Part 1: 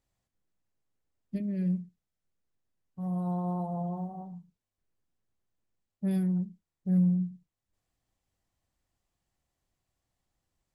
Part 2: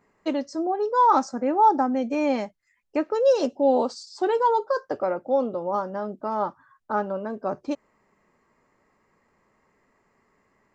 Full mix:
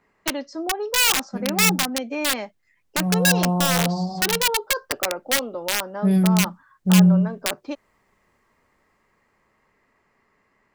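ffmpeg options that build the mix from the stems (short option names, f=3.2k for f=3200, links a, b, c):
-filter_complex "[0:a]highshelf=f=2.1k:g=-12,dynaudnorm=f=400:g=11:m=10dB,volume=0.5dB[a];[1:a]lowpass=3.4k,acrossover=split=180|780[b][c][d];[b]acompressor=threshold=-52dB:ratio=4[e];[c]acompressor=threshold=-24dB:ratio=4[f];[d]acompressor=threshold=-29dB:ratio=4[g];[e][f][g]amix=inputs=3:normalize=0,aeval=exprs='(mod(8.41*val(0)+1,2)-1)/8.41':c=same,volume=-2dB[h];[a][h]amix=inputs=2:normalize=0,highshelf=f=2k:g=11.5"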